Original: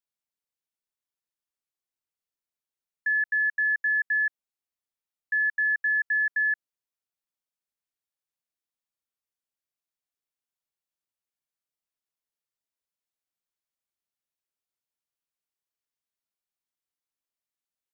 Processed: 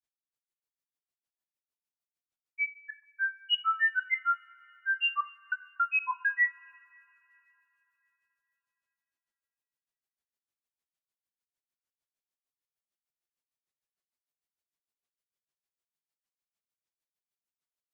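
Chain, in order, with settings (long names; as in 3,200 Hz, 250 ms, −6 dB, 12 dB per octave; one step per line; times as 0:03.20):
granular cloud 111 ms, grains 6.6 per second, spray 578 ms, pitch spread up and down by 12 semitones
coupled-rooms reverb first 0.39 s, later 3.7 s, from −22 dB, DRR 10 dB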